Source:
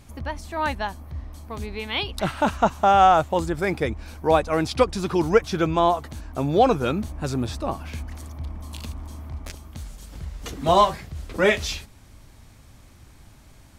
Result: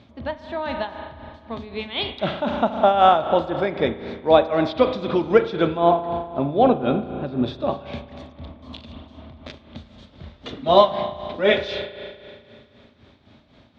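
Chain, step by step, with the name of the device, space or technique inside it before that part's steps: 5.77–7.44 air absorption 310 m; combo amplifier with spring reverb and tremolo (spring tank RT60 2.3 s, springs 35 ms, chirp 20 ms, DRR 6.5 dB; tremolo 3.9 Hz, depth 65%; speaker cabinet 100–4200 Hz, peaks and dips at 240 Hz +8 dB, 380 Hz +3 dB, 600 Hz +8 dB, 3600 Hz +9 dB)

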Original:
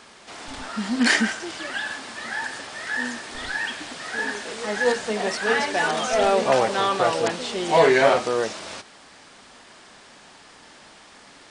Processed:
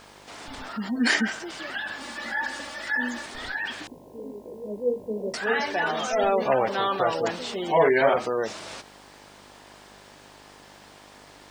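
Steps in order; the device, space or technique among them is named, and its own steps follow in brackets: spectral gate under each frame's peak -25 dB strong; 3.87–5.34 steep low-pass 590 Hz 72 dB/oct; video cassette with head-switching buzz (buzz 50 Hz, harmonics 21, -51 dBFS 0 dB/oct; white noise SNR 39 dB); 2–3.26 comb 3.5 ms, depth 83%; gain -3 dB

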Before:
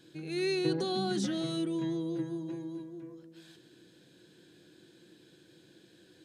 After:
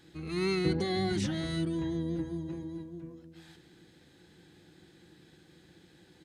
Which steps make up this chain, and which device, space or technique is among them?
octave pedal (harmoniser -12 st -3 dB); gain -1 dB

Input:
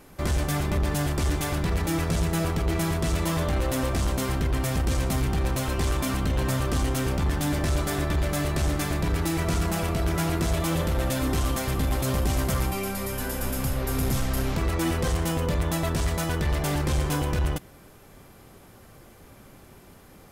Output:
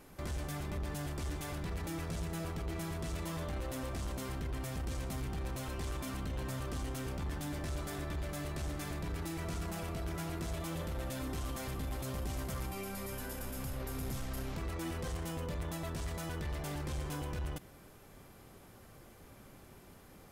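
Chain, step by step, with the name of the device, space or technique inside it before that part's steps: clipper into limiter (hard clip -19 dBFS, distortion -41 dB; limiter -27 dBFS, peak gain reduction 8 dB); gain -6 dB

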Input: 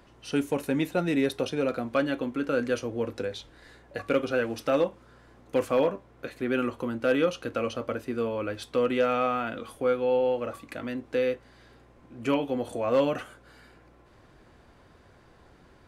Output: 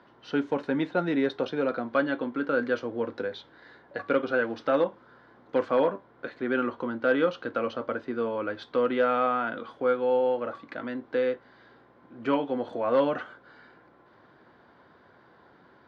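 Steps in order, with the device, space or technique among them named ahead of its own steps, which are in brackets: kitchen radio (speaker cabinet 170–4100 Hz, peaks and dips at 950 Hz +4 dB, 1500 Hz +5 dB, 2600 Hz -8 dB)

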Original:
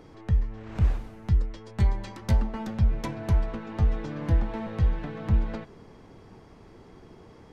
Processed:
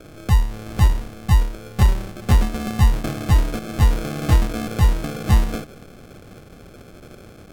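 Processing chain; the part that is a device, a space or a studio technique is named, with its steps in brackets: crushed at another speed (playback speed 1.25×; sample-and-hold 37×; playback speed 0.8×); gain +7.5 dB

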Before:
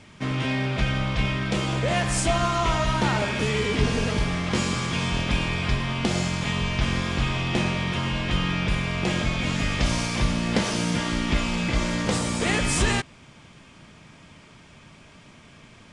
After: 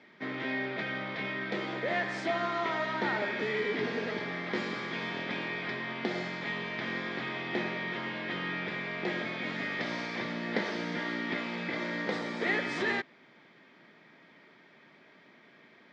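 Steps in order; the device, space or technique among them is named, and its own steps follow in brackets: HPF 220 Hz 12 dB/oct; kitchen radio (speaker cabinet 170–4100 Hz, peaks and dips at 380 Hz +4 dB, 1100 Hz -4 dB, 1900 Hz +8 dB, 2800 Hz -9 dB); gain -6.5 dB

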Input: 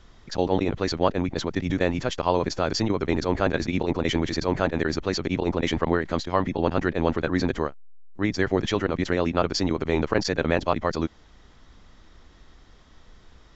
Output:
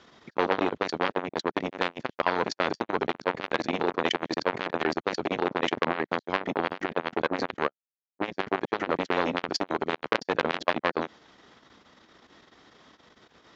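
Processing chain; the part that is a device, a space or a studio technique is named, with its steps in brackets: public-address speaker with an overloaded transformer (core saturation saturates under 2100 Hz; BPF 230–5600 Hz); gain +4.5 dB

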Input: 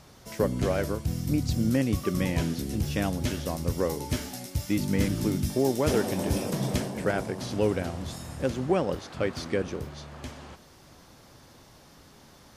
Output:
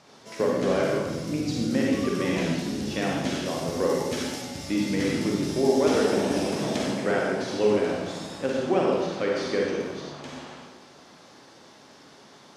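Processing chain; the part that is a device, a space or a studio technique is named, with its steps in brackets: supermarket ceiling speaker (BPF 220–6600 Hz; reverb RT60 1.2 s, pre-delay 40 ms, DRR -3 dB); 3.48–4.42 high shelf 9100 Hz +6 dB

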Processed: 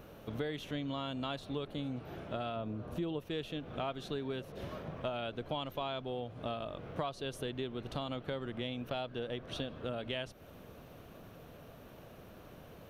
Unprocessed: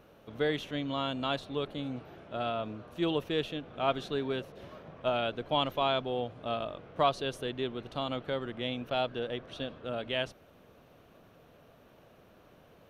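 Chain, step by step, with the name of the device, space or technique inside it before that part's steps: 2.56–3.19 tilt shelf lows +4 dB; ASMR close-microphone chain (low shelf 210 Hz +6 dB; compressor 6:1, threshold -39 dBFS, peak gain reduction 17 dB; high shelf 8200 Hz +7 dB); gain +3.5 dB

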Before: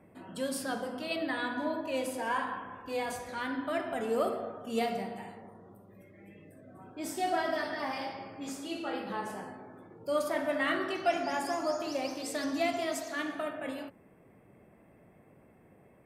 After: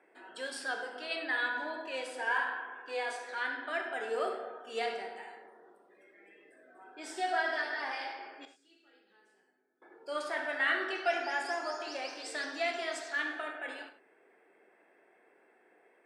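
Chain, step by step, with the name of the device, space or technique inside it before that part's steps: 8.45–9.82 passive tone stack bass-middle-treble 10-0-1; phone speaker on a table (speaker cabinet 400–8000 Hz, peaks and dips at 580 Hz -9 dB, 1100 Hz -6 dB, 1600 Hz +7 dB, 6500 Hz -7 dB); non-linear reverb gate 0.12 s flat, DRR 7.5 dB

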